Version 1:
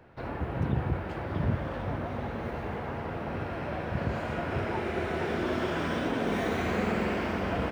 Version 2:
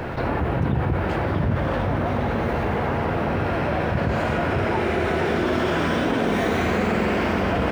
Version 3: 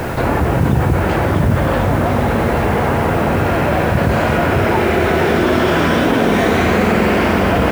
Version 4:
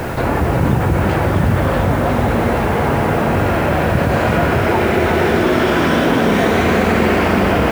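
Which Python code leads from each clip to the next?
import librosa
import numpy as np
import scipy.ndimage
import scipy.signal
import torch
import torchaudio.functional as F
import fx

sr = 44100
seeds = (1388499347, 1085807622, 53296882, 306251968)

y1 = fx.env_flatten(x, sr, amount_pct=70)
y1 = y1 * librosa.db_to_amplitude(4.0)
y2 = fx.quant_dither(y1, sr, seeds[0], bits=8, dither='triangular')
y2 = y2 * librosa.db_to_amplitude(8.0)
y3 = y2 + 10.0 ** (-7.5 / 20.0) * np.pad(y2, (int(356 * sr / 1000.0), 0))[:len(y2)]
y3 = y3 * librosa.db_to_amplitude(-1.0)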